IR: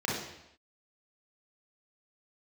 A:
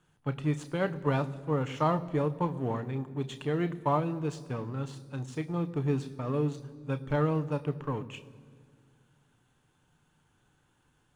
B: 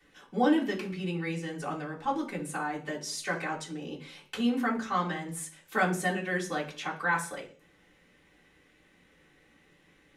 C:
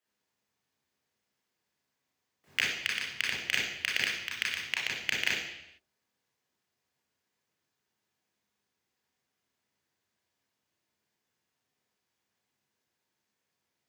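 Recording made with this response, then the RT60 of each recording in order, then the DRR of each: C; 2.0 s, 0.45 s, non-exponential decay; 9.5, −5.5, −4.5 decibels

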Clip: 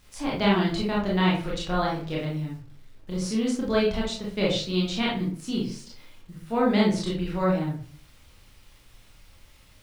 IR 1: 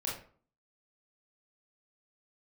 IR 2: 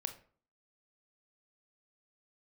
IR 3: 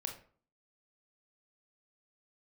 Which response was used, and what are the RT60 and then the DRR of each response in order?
1; 0.45, 0.45, 0.45 seconds; −5.0, 7.5, 3.0 decibels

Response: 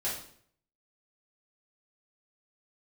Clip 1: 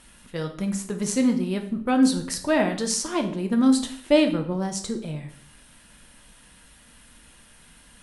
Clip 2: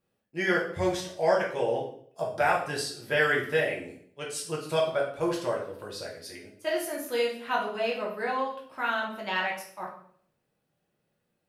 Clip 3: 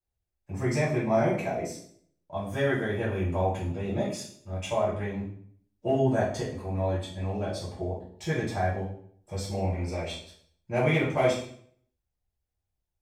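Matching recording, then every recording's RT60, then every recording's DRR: 3; 0.60, 0.60, 0.60 seconds; 4.0, −4.0, −10.0 decibels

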